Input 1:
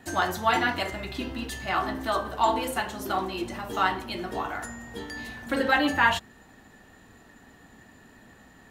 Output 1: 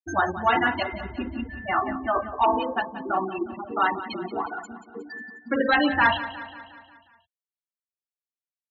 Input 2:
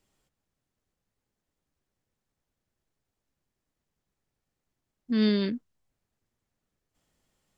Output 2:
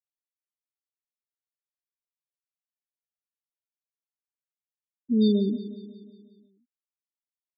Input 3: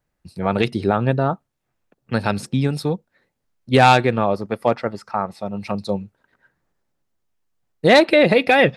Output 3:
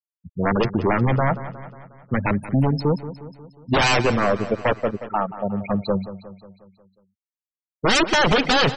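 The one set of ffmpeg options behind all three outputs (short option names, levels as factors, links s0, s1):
-af "aeval=exprs='0.188*(abs(mod(val(0)/0.188+3,4)-2)-1)':c=same,afftfilt=real='re*gte(hypot(re,im),0.0794)':imag='im*gte(hypot(re,im),0.0794)':win_size=1024:overlap=0.75,aecho=1:1:180|360|540|720|900|1080:0.2|0.11|0.0604|0.0332|0.0183|0.01,volume=1.41"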